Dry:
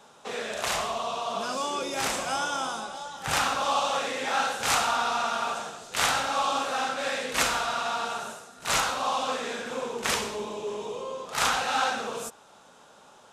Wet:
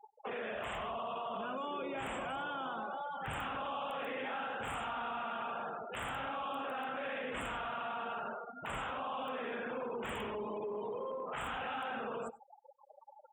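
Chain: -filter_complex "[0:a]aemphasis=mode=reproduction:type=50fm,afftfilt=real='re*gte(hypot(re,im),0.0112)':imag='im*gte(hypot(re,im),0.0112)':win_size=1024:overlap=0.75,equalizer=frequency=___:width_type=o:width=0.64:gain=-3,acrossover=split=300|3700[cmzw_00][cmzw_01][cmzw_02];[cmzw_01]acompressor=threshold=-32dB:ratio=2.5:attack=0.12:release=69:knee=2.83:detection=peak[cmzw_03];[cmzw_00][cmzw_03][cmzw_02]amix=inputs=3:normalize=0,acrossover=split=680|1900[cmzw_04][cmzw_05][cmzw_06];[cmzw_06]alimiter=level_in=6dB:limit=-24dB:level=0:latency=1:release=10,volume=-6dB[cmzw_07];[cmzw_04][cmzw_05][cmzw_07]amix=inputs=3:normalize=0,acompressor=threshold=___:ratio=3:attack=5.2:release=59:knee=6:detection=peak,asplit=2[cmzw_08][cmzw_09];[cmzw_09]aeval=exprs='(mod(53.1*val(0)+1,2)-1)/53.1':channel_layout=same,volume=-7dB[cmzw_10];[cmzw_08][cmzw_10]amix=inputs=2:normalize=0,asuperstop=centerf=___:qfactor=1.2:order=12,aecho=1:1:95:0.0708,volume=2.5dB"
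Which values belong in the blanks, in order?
160, -47dB, 5100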